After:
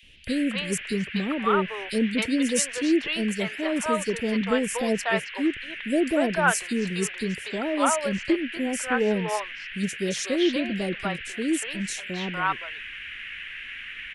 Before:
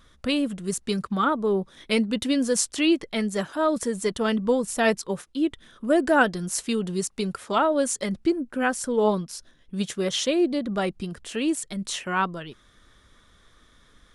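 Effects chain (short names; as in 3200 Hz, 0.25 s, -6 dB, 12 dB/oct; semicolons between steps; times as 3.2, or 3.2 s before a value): band noise 1600–3000 Hz -37 dBFS; three bands offset in time highs, lows, mids 30/270 ms, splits 600/4000 Hz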